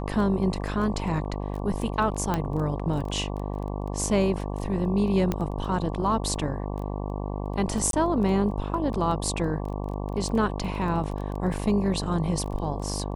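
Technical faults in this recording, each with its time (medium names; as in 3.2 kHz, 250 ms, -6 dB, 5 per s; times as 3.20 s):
buzz 50 Hz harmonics 23 -31 dBFS
crackle 11 per s -33 dBFS
2.34 s: pop -12 dBFS
5.32 s: pop -13 dBFS
7.91–7.93 s: dropout 22 ms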